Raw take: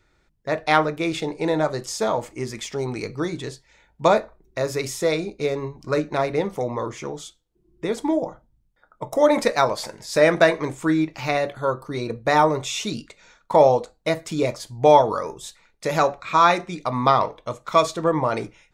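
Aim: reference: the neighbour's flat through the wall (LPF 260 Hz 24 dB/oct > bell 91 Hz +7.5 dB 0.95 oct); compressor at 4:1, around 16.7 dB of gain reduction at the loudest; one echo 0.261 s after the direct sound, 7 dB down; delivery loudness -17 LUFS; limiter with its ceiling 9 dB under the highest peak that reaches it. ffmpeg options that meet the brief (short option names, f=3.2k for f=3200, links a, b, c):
-af "acompressor=threshold=-30dB:ratio=4,alimiter=limit=-24dB:level=0:latency=1,lowpass=f=260:w=0.5412,lowpass=f=260:w=1.3066,equalizer=f=91:t=o:w=0.95:g=7.5,aecho=1:1:261:0.447,volume=24dB"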